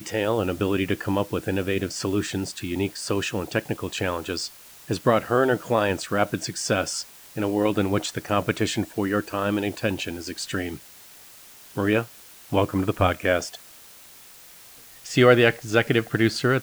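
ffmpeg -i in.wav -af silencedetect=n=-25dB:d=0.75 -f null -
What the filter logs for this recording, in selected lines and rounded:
silence_start: 10.75
silence_end: 11.77 | silence_duration: 1.02
silence_start: 13.47
silence_end: 15.11 | silence_duration: 1.64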